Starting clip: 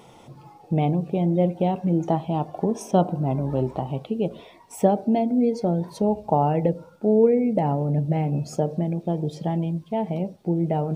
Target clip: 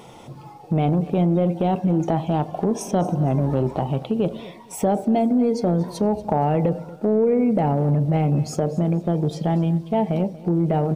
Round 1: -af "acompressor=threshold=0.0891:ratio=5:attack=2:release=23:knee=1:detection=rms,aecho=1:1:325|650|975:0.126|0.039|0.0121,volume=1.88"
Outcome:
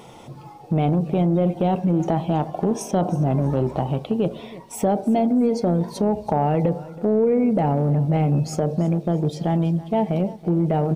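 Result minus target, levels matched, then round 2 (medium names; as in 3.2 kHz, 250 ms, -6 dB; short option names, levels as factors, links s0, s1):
echo 90 ms late
-af "acompressor=threshold=0.0891:ratio=5:attack=2:release=23:knee=1:detection=rms,aecho=1:1:235|470|705:0.126|0.039|0.0121,volume=1.88"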